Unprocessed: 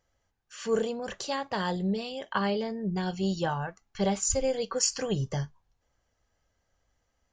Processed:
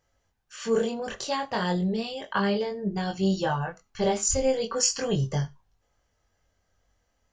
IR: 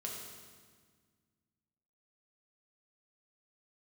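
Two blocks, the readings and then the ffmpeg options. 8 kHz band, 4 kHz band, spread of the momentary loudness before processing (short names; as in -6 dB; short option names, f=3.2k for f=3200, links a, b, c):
+3.0 dB, +3.0 dB, 8 LU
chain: -filter_complex "[0:a]flanger=delay=20:depth=3:speed=0.35,asplit=2[a][b];[1:a]atrim=start_sample=2205,atrim=end_sample=4410[c];[b][c]afir=irnorm=-1:irlink=0,volume=-12dB[d];[a][d]amix=inputs=2:normalize=0,volume=4.5dB"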